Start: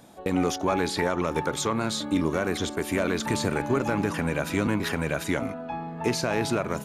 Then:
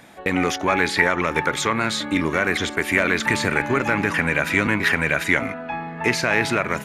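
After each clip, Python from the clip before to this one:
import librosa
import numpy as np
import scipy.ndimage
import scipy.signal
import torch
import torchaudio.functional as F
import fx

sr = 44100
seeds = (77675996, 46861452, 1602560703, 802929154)

y = fx.peak_eq(x, sr, hz=2000.0, db=14.0, octaves=1.1)
y = y * 10.0 ** (2.0 / 20.0)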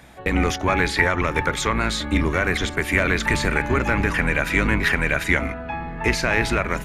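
y = fx.octave_divider(x, sr, octaves=2, level_db=2.0)
y = y * 10.0 ** (-1.0 / 20.0)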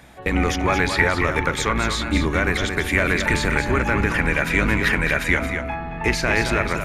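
y = x + 10.0 ** (-7.5 / 20.0) * np.pad(x, (int(224 * sr / 1000.0), 0))[:len(x)]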